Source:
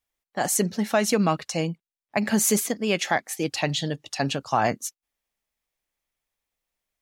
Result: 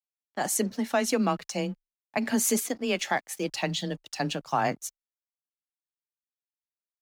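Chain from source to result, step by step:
dead-zone distortion −49 dBFS
frequency shifter +18 Hz
level −3.5 dB

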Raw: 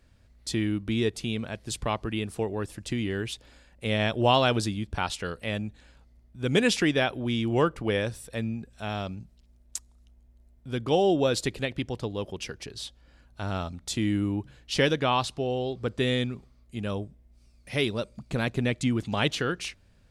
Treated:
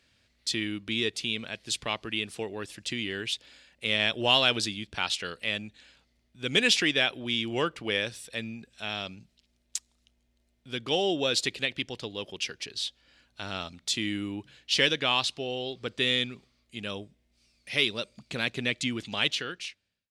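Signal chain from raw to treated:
fade-out on the ending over 1.14 s
meter weighting curve D
in parallel at −8 dB: soft clipping −10.5 dBFS, distortion −15 dB
on the sum: level −7.5 dB

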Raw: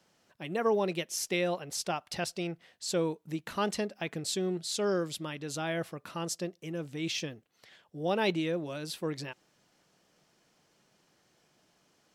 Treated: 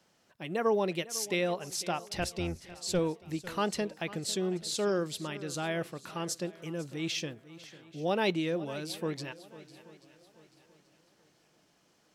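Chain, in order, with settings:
0:02.12–0:02.99: sub-octave generator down 1 octave, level −2 dB
feedback echo with a long and a short gap by turns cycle 834 ms, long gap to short 1.5 to 1, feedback 32%, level −17.5 dB

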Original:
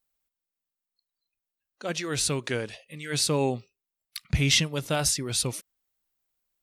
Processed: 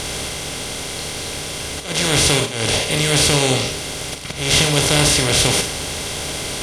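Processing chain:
compressor on every frequency bin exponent 0.2
volume swells 227 ms
four-comb reverb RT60 0.39 s, combs from 27 ms, DRR 5 dB
level +1.5 dB

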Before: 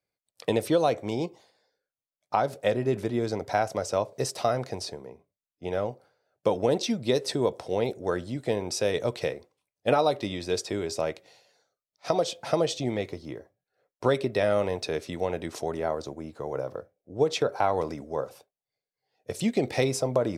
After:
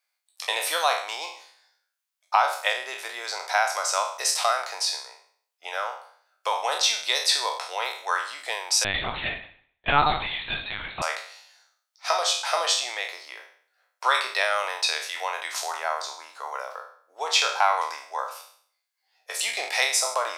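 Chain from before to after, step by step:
peak hold with a decay on every bin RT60 0.55 s
high-pass filter 910 Hz 24 dB per octave
0:08.84–0:11.02: linear-prediction vocoder at 8 kHz pitch kept
level +8.5 dB

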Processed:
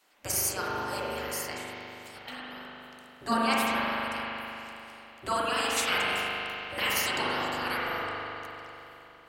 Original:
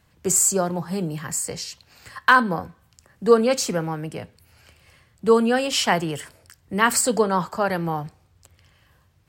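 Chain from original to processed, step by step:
gate on every frequency bin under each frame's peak −15 dB weak
0:01.59–0:03.27: downward compressor 3 to 1, threshold −48 dBFS, peak gain reduction 18.5 dB
spring reverb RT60 3.3 s, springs 40 ms, chirp 70 ms, DRR −5.5 dB

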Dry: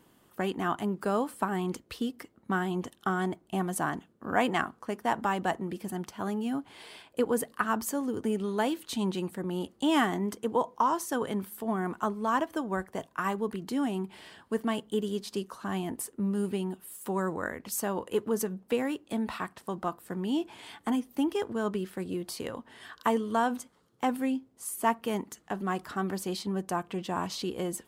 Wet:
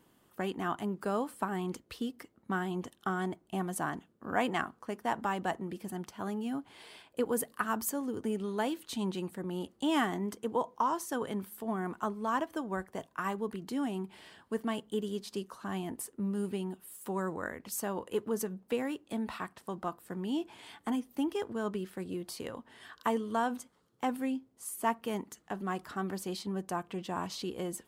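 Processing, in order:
0:07.25–0:07.90: high-shelf EQ 9,800 Hz +9 dB
level −4 dB

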